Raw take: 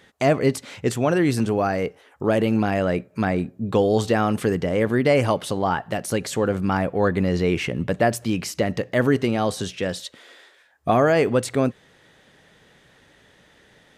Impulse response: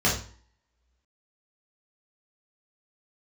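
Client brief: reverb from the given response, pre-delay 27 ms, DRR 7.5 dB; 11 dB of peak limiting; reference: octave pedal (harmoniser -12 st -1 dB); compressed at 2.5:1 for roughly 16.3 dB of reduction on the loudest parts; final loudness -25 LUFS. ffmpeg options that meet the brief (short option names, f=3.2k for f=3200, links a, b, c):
-filter_complex "[0:a]acompressor=threshold=-40dB:ratio=2.5,alimiter=level_in=6dB:limit=-24dB:level=0:latency=1,volume=-6dB,asplit=2[a][b];[1:a]atrim=start_sample=2205,adelay=27[c];[b][c]afir=irnorm=-1:irlink=0,volume=-22dB[d];[a][d]amix=inputs=2:normalize=0,asplit=2[e][f];[f]asetrate=22050,aresample=44100,atempo=2,volume=-1dB[g];[e][g]amix=inputs=2:normalize=0,volume=11dB"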